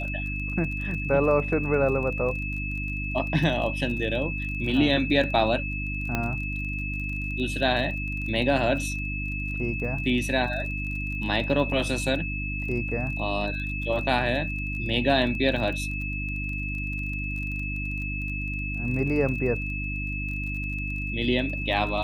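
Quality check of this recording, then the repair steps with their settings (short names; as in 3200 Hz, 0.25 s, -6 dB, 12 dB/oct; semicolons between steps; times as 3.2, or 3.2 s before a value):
crackle 24/s -34 dBFS
hum 50 Hz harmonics 6 -32 dBFS
tone 2600 Hz -32 dBFS
6.15 pop -12 dBFS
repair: de-click; de-hum 50 Hz, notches 6; notch 2600 Hz, Q 30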